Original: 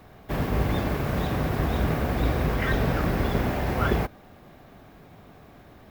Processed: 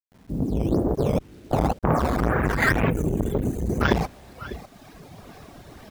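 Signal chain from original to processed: opening faded in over 0.98 s; low-pass sweep 240 Hz -> 5600 Hz, 0.27–3.92; in parallel at -8 dB: decimation with a swept rate 9×, swing 160% 2 Hz; 0.94–1.83 on the sum: step gate "xx...xx.." 139 bpm -60 dB; on a send: echo 0.598 s -17.5 dB; on the sum: reverb removal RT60 1.3 s; bit-crush 10-bit; 2.9–3.81 spectral gain 500–5900 Hz -21 dB; core saturation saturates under 620 Hz; gain +5.5 dB

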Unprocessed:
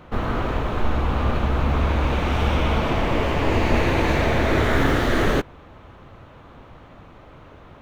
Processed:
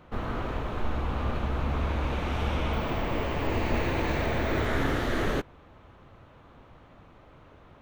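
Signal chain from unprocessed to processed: 2.73–4.66 careless resampling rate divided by 2×, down filtered, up hold; gain -8 dB

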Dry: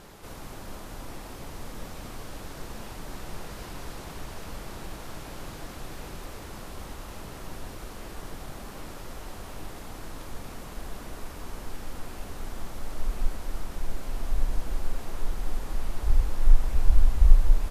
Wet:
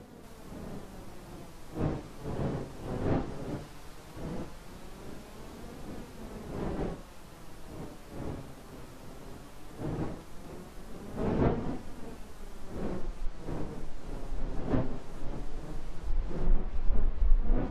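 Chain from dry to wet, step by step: wind noise 360 Hz -29 dBFS; flange 0.17 Hz, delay 4 ms, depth 3.9 ms, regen +60%; treble ducked by the level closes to 2900 Hz, closed at -14 dBFS; gain -5 dB

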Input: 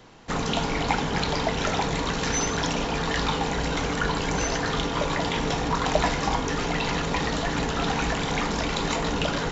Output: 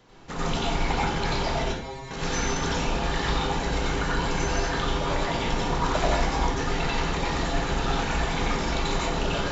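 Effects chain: 1.63–2.11 metallic resonator 130 Hz, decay 0.42 s, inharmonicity 0.002; reverb RT60 0.50 s, pre-delay 84 ms, DRR -5.5 dB; gain -7.5 dB

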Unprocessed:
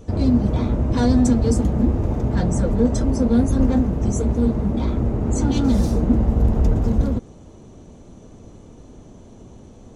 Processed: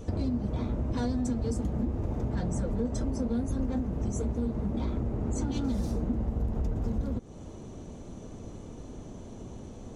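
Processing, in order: compressor 4:1, threshold -29 dBFS, peak gain reduction 15 dB

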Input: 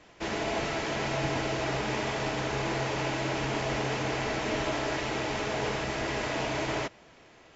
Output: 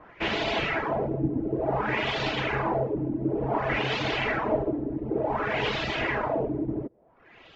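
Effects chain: reverb removal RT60 0.88 s; LFO low-pass sine 0.56 Hz 280–3800 Hz; gain +4 dB

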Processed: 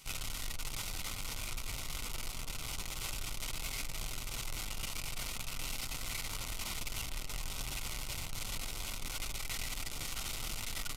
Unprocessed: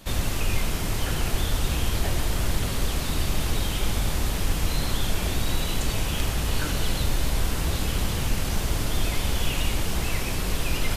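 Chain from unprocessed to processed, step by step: half-waves squared off; tilt shelf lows -3.5 dB, about 790 Hz; band-limited delay 0.394 s, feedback 62%, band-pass 670 Hz, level -5 dB; flange 0.53 Hz, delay 5 ms, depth 1.4 ms, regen -53%; notches 60/120/180/240/300 Hz; limiter -21 dBFS, peak gain reduction 8.5 dB; pitch shift -6.5 st; Butterworth band-stop 1700 Hz, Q 4.7; passive tone stack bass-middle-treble 5-5-5; gain +3.5 dB

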